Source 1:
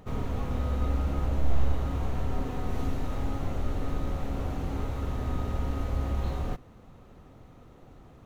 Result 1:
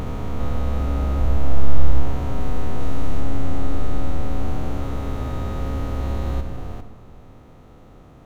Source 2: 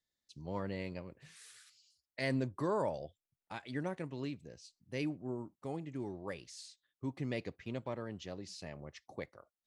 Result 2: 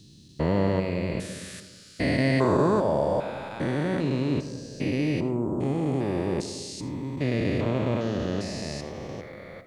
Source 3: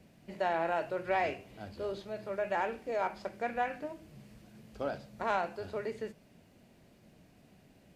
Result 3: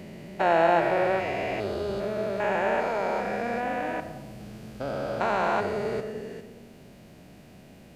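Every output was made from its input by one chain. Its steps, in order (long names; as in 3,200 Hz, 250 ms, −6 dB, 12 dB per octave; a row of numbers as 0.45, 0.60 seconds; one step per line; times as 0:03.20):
spectrum averaged block by block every 400 ms
comb and all-pass reverb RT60 1.4 s, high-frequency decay 0.25×, pre-delay 30 ms, DRR 10 dB
loudness normalisation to −27 LKFS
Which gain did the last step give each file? +6.5, +18.0, +12.0 decibels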